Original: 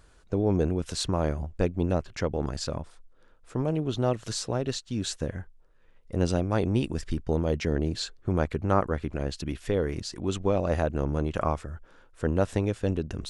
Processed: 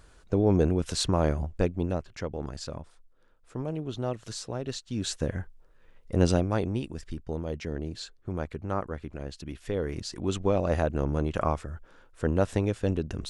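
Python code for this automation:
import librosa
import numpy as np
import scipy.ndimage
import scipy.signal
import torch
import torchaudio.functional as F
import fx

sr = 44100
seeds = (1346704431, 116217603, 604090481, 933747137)

y = fx.gain(x, sr, db=fx.line((1.45, 2.0), (2.09, -5.5), (4.56, -5.5), (5.37, 3.0), (6.31, 3.0), (6.86, -7.0), (9.42, -7.0), (10.16, 0.0)))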